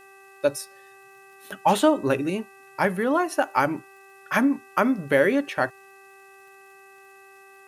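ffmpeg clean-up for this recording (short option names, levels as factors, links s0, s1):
-af "adeclick=t=4,bandreject=f=390.2:t=h:w=4,bandreject=f=780.4:t=h:w=4,bandreject=f=1170.6:t=h:w=4,bandreject=f=1560.8:t=h:w=4,bandreject=f=1951:t=h:w=4,bandreject=f=2600:w=30,agate=range=0.0891:threshold=0.00794"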